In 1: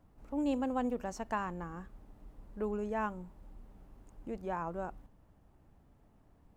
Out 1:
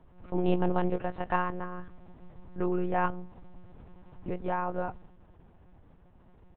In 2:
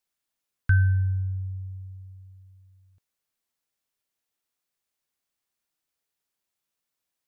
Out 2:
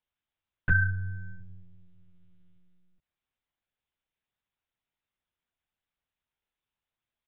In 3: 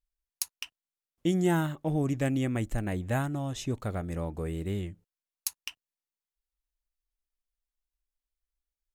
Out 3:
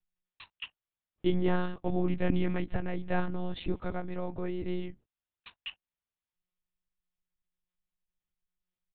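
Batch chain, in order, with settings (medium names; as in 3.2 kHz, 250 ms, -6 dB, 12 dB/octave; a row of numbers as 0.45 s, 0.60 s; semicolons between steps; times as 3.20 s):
doubling 15 ms -11 dB; monotone LPC vocoder at 8 kHz 180 Hz; peak normalisation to -12 dBFS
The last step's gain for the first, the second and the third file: +6.5 dB, -1.5 dB, 0.0 dB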